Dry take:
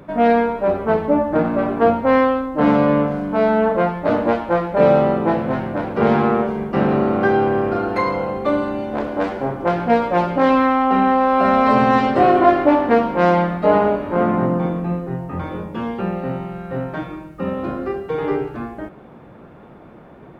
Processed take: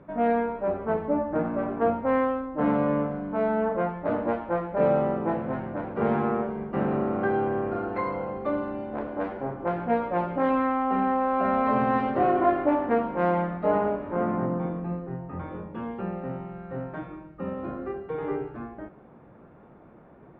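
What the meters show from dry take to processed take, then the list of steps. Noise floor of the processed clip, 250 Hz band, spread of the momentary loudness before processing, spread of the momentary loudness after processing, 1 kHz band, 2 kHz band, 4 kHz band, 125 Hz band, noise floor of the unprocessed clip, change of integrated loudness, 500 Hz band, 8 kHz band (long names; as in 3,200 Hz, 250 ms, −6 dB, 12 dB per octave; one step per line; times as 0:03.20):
−51 dBFS, −9.0 dB, 12 LU, 12 LU, −9.0 dB, −10.5 dB, below −15 dB, −9.0 dB, −42 dBFS, −9.0 dB, −9.0 dB, can't be measured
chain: low-pass filter 2,100 Hz 12 dB per octave
level −9 dB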